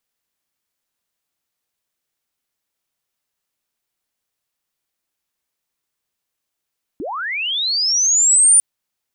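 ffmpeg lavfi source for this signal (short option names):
-f lavfi -i "aevalsrc='pow(10,(-24+17*t/1.6)/20)*sin(2*PI*(240*t+9160*t*t/(2*1.6)))':d=1.6:s=44100"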